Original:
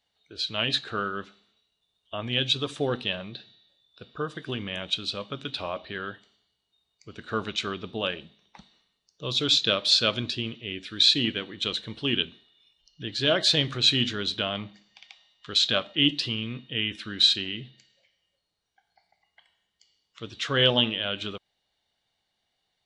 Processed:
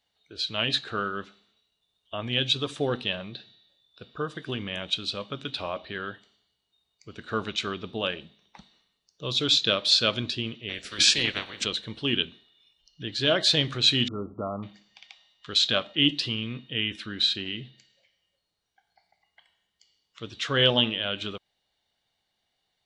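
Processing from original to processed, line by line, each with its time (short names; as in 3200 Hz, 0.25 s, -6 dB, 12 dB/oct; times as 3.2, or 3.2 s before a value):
10.68–11.64 spectral limiter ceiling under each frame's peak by 23 dB
14.08–14.63 brick-wall FIR low-pass 1400 Hz
17.05–17.45 high shelf 5700 Hz -> 3400 Hz -9.5 dB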